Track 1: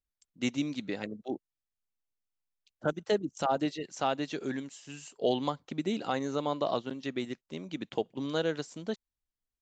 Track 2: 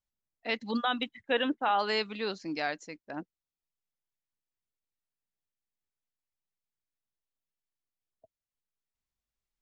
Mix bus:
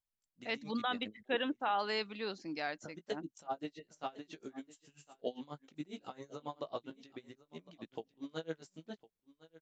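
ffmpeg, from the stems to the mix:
ffmpeg -i stem1.wav -i stem2.wav -filter_complex "[0:a]flanger=delay=17.5:depth=2.8:speed=0.26,aeval=exprs='val(0)*pow(10,-24*(0.5-0.5*cos(2*PI*7.4*n/s))/20)':channel_layout=same,volume=-5dB,asplit=2[link_01][link_02];[link_02]volume=-19.5dB[link_03];[1:a]volume=-6dB[link_04];[link_03]aecho=0:1:1057:1[link_05];[link_01][link_04][link_05]amix=inputs=3:normalize=0" out.wav

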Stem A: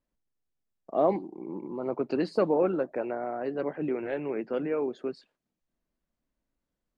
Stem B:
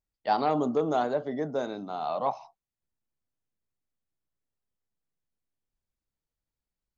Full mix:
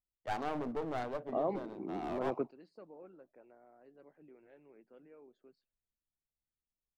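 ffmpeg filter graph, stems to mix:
ffmpeg -i stem1.wav -i stem2.wav -filter_complex "[0:a]adelay=400,volume=-3.5dB[link_01];[1:a]adynamicsmooth=sensitivity=3.5:basefreq=850,aeval=exprs='clip(val(0),-1,0.0266)':channel_layout=same,volume=-8.5dB,asplit=2[link_02][link_03];[link_03]apad=whole_len=325190[link_04];[link_01][link_04]sidechaingate=range=-25dB:threshold=-56dB:ratio=16:detection=peak[link_05];[link_05][link_02]amix=inputs=2:normalize=0,alimiter=limit=-23.5dB:level=0:latency=1:release=325" out.wav

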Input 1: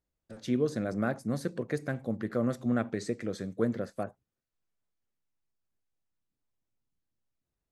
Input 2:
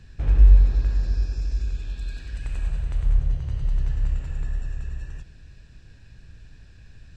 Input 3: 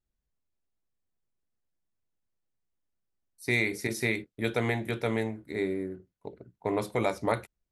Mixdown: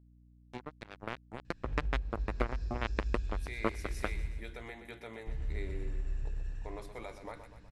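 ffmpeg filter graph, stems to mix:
ffmpeg -i stem1.wav -i stem2.wav -i stem3.wav -filter_complex "[0:a]acompressor=threshold=-29dB:ratio=8,acrusher=bits=3:mix=0:aa=0.5,adelay=50,volume=-3dB[link_01];[1:a]acompressor=threshold=-21dB:ratio=6,adelay=1450,volume=-19dB,asplit=3[link_02][link_03][link_04];[link_02]atrim=end=4.28,asetpts=PTS-STARTPTS,afade=type=out:start_time=4.276:duration=0.004:curve=hsin[link_05];[link_03]atrim=start=4.28:end=5.27,asetpts=PTS-STARTPTS,volume=0[link_06];[link_04]atrim=start=5.27,asetpts=PTS-STARTPTS,afade=type=in:duration=0.004:curve=hsin[link_07];[link_05][link_06][link_07]concat=n=3:v=0:a=1,asplit=2[link_08][link_09];[link_09]volume=-4dB[link_10];[2:a]lowshelf=frequency=320:gain=-11.5,alimiter=limit=-23.5dB:level=0:latency=1:release=219,volume=-17.5dB,asplit=2[link_11][link_12];[link_12]volume=-10dB[link_13];[link_10][link_13]amix=inputs=2:normalize=0,aecho=0:1:123|246|369|492|615|738|861|984:1|0.53|0.281|0.149|0.0789|0.0418|0.0222|0.0117[link_14];[link_01][link_08][link_11][link_14]amix=inputs=4:normalize=0,lowpass=11000,dynaudnorm=framelen=340:gausssize=9:maxgain=8dB,aeval=exprs='val(0)+0.00112*(sin(2*PI*60*n/s)+sin(2*PI*2*60*n/s)/2+sin(2*PI*3*60*n/s)/3+sin(2*PI*4*60*n/s)/4+sin(2*PI*5*60*n/s)/5)':channel_layout=same" out.wav

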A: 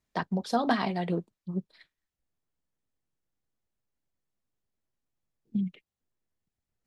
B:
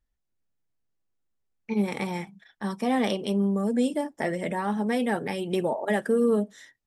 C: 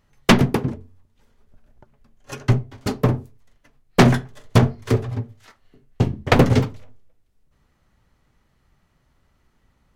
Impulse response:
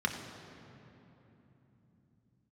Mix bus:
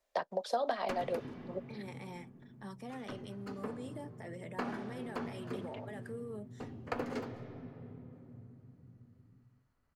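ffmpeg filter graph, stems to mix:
-filter_complex "[0:a]highpass=frequency=570:width_type=q:width=4.9,volume=0.5dB[link_01];[1:a]alimiter=limit=-22dB:level=0:latency=1:release=45,volume=-14.5dB,asplit=2[link_02][link_03];[2:a]bandreject=frequency=60:width_type=h:width=6,bandreject=frequency=120:width_type=h:width=6,acrossover=split=280[link_04][link_05];[link_04]acompressor=threshold=-21dB:ratio=6[link_06];[link_06][link_05]amix=inputs=2:normalize=0,adelay=600,volume=-16dB,asplit=2[link_07][link_08];[link_08]volume=-13dB[link_09];[link_03]apad=whole_len=465408[link_10];[link_07][link_10]sidechaincompress=threshold=-47dB:ratio=8:attack=5.2:release=1470[link_11];[3:a]atrim=start_sample=2205[link_12];[link_09][link_12]afir=irnorm=-1:irlink=0[link_13];[link_01][link_02][link_11][link_13]amix=inputs=4:normalize=0,acrossover=split=240|1400[link_14][link_15][link_16];[link_14]acompressor=threshold=-47dB:ratio=4[link_17];[link_15]acompressor=threshold=-34dB:ratio=4[link_18];[link_16]acompressor=threshold=-45dB:ratio=4[link_19];[link_17][link_18][link_19]amix=inputs=3:normalize=0"

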